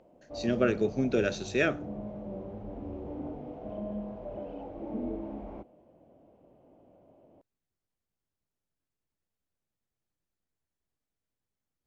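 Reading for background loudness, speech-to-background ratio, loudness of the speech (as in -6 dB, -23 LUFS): -40.0 LUFS, 11.0 dB, -29.0 LUFS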